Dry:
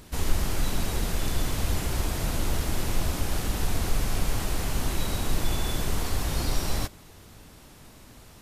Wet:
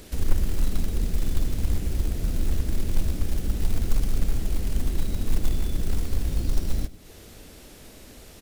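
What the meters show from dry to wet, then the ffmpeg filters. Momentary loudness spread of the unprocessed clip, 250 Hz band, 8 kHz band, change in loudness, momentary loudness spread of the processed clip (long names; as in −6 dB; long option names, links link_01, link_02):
6 LU, 0.0 dB, −7.0 dB, 0.0 dB, 18 LU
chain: -filter_complex "[0:a]equalizer=frequency=125:width_type=o:width=1:gain=-7,equalizer=frequency=500:width_type=o:width=1:gain=4,equalizer=frequency=1000:width_type=o:width=1:gain=-8,acrossover=split=280[link_01][link_02];[link_02]acompressor=threshold=-47dB:ratio=12[link_03];[link_01][link_03]amix=inputs=2:normalize=0,acrusher=bits=6:mode=log:mix=0:aa=0.000001,aecho=1:1:101:0.112,volume=4.5dB"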